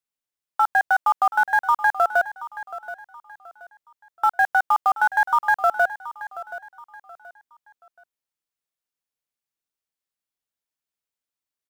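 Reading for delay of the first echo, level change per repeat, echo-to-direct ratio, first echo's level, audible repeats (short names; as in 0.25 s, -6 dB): 0.727 s, -10.0 dB, -14.5 dB, -15.0 dB, 3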